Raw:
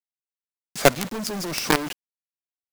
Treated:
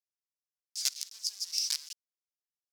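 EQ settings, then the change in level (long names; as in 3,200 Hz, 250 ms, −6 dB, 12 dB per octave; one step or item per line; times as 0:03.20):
resonant band-pass 5,200 Hz, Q 3.1
first difference
+4.0 dB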